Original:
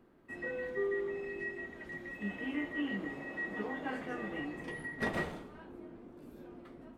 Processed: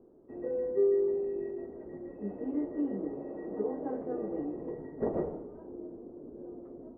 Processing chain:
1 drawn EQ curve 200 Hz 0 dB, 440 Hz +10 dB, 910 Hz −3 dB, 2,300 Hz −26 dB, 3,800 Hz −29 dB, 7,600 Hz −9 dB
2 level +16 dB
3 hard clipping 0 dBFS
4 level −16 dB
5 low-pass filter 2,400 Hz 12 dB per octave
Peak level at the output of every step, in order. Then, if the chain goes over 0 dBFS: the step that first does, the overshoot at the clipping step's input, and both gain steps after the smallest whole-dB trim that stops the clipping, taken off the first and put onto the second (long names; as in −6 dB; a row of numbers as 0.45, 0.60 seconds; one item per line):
−18.5, −2.5, −2.5, −18.5, −18.5 dBFS
no step passes full scale